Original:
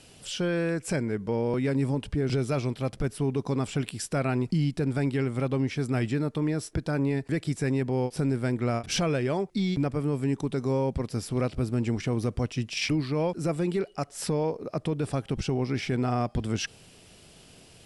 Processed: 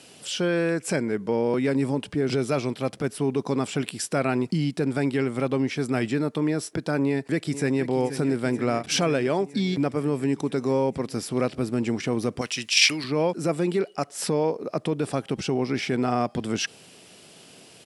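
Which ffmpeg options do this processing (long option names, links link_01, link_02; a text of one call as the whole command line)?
ffmpeg -i in.wav -filter_complex "[0:a]asplit=2[link_01][link_02];[link_02]afade=type=in:start_time=7.05:duration=0.01,afade=type=out:start_time=7.88:duration=0.01,aecho=0:1:480|960|1440|1920|2400|2880|3360|3840|4320|4800|5280|5760:0.251189|0.188391|0.141294|0.10597|0.0794777|0.0596082|0.0447062|0.0335296|0.0251472|0.0188604|0.0141453|0.010609[link_03];[link_01][link_03]amix=inputs=2:normalize=0,asettb=1/sr,asplit=3[link_04][link_05][link_06];[link_04]atrim=end=12.414[link_07];[link_05]atrim=start=12.41:end=13.04,asetpts=PTS-STARTPTS,afade=type=in:duration=0.004:curve=qsin,afade=type=out:start_time=0.626:duration=0.004:curve=qsin,tiltshelf=frequency=970:gain=-9.5[link_08];[link_06]atrim=start=13.036[link_09];[link_07][link_08]acrossfade=duration=0.004:curve1=hsin:curve2=qsin[link_10];[link_10][link_09]acrossfade=duration=0.004:curve1=qsin:curve2=hsin,highpass=190,volume=4.5dB" out.wav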